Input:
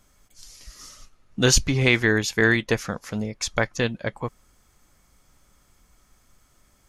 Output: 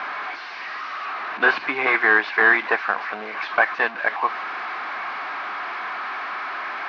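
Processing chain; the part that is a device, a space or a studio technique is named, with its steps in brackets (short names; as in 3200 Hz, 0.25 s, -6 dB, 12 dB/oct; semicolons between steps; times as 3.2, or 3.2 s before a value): digital answering machine (BPF 380–3400 Hz; delta modulation 32 kbps, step -34 dBFS; speaker cabinet 390–3600 Hz, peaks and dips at 520 Hz -10 dB, 750 Hz +7 dB, 1100 Hz +9 dB, 1600 Hz +9 dB, 2300 Hz +4 dB, 3300 Hz -6 dB); gain +6 dB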